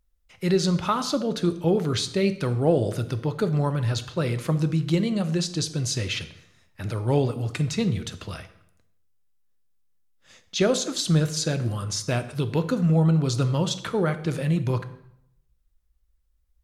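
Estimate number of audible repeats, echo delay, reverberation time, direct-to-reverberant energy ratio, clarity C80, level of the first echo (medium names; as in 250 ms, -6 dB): no echo, no echo, 0.75 s, 10.0 dB, 16.0 dB, no echo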